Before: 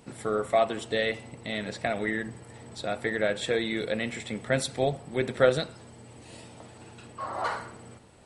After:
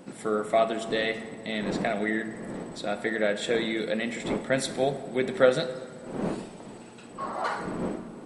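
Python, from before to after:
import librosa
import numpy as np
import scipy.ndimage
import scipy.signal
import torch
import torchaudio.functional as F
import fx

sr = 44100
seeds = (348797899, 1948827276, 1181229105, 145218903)

y = fx.dmg_wind(x, sr, seeds[0], corner_hz=420.0, level_db=-39.0)
y = fx.low_shelf_res(y, sr, hz=130.0, db=-11.5, q=1.5)
y = fx.rev_plate(y, sr, seeds[1], rt60_s=1.8, hf_ratio=0.55, predelay_ms=0, drr_db=10.5)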